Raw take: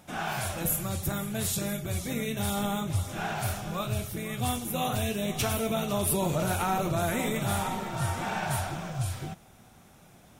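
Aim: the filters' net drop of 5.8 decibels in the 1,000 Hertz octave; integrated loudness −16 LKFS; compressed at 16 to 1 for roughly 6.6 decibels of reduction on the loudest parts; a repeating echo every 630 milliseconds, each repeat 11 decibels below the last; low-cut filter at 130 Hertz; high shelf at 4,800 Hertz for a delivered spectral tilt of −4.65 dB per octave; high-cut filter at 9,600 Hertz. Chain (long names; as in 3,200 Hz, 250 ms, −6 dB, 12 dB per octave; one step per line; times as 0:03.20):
high-pass filter 130 Hz
low-pass filter 9,600 Hz
parametric band 1,000 Hz −8.5 dB
high-shelf EQ 4,800 Hz −4 dB
downward compressor 16 to 1, threshold −33 dBFS
repeating echo 630 ms, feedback 28%, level −11 dB
level +21.5 dB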